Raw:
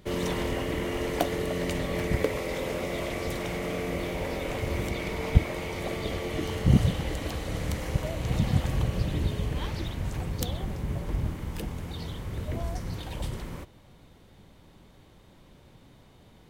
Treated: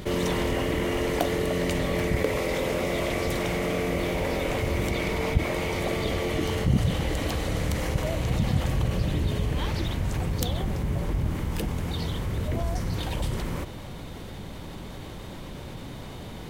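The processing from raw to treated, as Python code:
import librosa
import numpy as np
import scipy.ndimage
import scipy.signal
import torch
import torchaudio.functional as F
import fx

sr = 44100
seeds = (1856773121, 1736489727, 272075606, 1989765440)

y = fx.env_flatten(x, sr, amount_pct=50)
y = y * librosa.db_to_amplitude(-4.5)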